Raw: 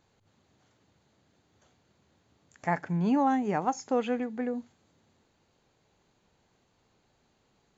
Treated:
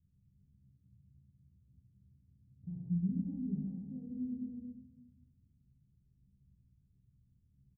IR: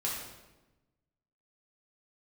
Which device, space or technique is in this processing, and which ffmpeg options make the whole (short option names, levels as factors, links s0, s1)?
club heard from the street: -filter_complex "[0:a]aecho=1:1:15|66:0.631|0.316,alimiter=limit=0.0794:level=0:latency=1:release=28,lowpass=f=160:w=0.5412,lowpass=f=160:w=1.3066[s0];[1:a]atrim=start_sample=2205[s1];[s0][s1]afir=irnorm=-1:irlink=0,volume=1.12"